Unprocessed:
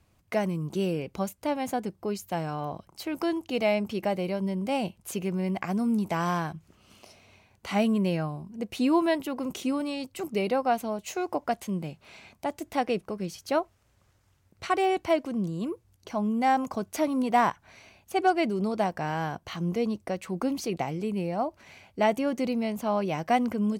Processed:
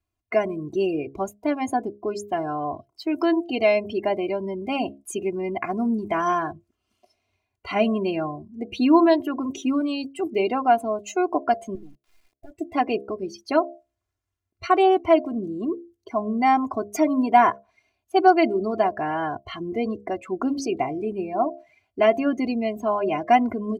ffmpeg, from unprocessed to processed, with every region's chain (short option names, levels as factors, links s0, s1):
-filter_complex "[0:a]asettb=1/sr,asplit=3[s0][s1][s2];[s0]atrim=end=11.754[s3];[s1]atrim=start=11.75:end=12.51,asetpts=PTS-STARTPTS,afade=t=in:d=0.004:c=qsin,afade=t=out:st=0.756:d=0.004:c=qsin,lowshelf=f=75:g=6,acompressor=threshold=0.01:ratio=8:attack=3.2:release=140:knee=1:detection=peak,acrusher=bits=5:dc=4:mix=0:aa=0.000001[s4];[s2]atrim=start=12.506[s5];[s3][s4]acrossfade=d=0.004:c1=hsin:c2=qsin[s6];[s6][s5]acrossfade=d=0.004:c1=qsin:c2=hsin,bandreject=f=68.46:t=h:w=4,bandreject=f=136.92:t=h:w=4,bandreject=f=205.38:t=h:w=4,bandreject=f=273.84:t=h:w=4,bandreject=f=342.3:t=h:w=4,bandreject=f=410.76:t=h:w=4,bandreject=f=479.22:t=h:w=4,bandreject=f=547.68:t=h:w=4,bandreject=f=616.14:t=h:w=4,bandreject=f=684.6:t=h:w=4,afftdn=nr=23:nf=-39,aecho=1:1:2.9:0.79,volume=1.5"